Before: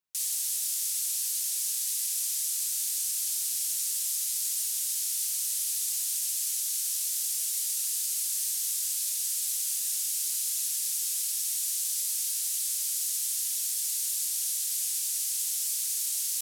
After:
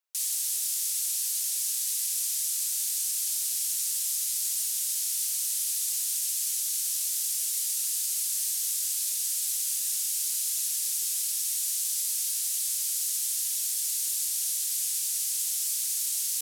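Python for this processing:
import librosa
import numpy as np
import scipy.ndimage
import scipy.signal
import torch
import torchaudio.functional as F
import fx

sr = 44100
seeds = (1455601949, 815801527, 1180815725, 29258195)

y = scipy.signal.sosfilt(scipy.signal.butter(4, 450.0, 'highpass', fs=sr, output='sos'), x)
y = y * librosa.db_to_amplitude(1.0)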